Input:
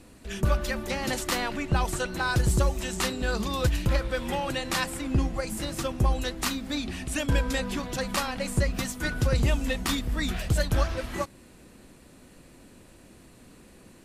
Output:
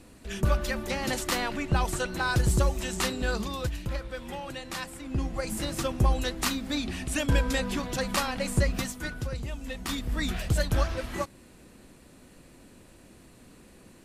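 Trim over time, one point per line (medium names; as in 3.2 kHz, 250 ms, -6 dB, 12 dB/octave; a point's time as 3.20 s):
3.29 s -0.5 dB
3.75 s -8 dB
5.01 s -8 dB
5.50 s +0.5 dB
8.74 s +0.5 dB
9.47 s -12.5 dB
10.13 s -1 dB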